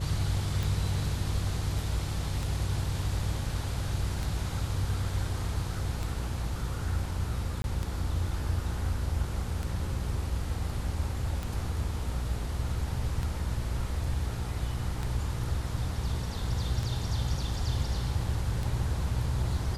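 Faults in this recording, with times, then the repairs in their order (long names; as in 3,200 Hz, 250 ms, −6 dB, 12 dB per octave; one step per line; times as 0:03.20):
mains buzz 60 Hz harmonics 9 −35 dBFS
scratch tick 33 1/3 rpm
0:07.62–0:07.64: drop-out 21 ms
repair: click removal
hum removal 60 Hz, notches 9
repair the gap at 0:07.62, 21 ms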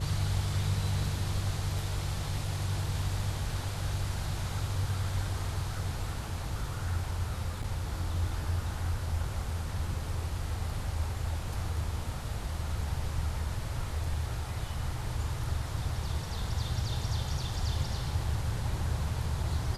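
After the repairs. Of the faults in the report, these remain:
none of them is left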